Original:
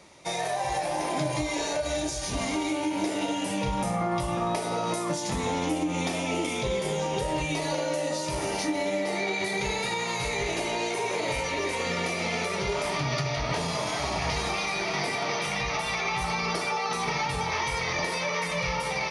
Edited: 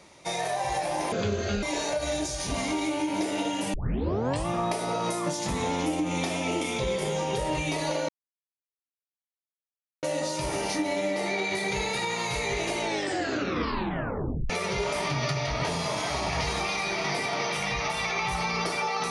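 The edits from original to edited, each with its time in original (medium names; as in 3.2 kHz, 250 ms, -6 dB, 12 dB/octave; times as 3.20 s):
1.12–1.46 s: speed 67%
3.57 s: tape start 0.73 s
7.92 s: insert silence 1.94 s
10.69 s: tape stop 1.70 s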